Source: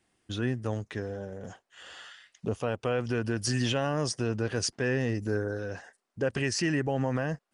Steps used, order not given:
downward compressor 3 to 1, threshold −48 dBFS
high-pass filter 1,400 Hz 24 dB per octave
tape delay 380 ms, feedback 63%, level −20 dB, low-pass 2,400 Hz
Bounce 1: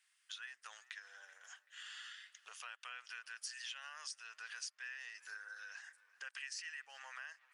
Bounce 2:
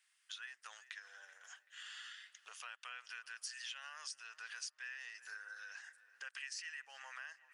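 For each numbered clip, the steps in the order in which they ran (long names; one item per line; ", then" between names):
tape delay, then high-pass filter, then downward compressor
high-pass filter, then tape delay, then downward compressor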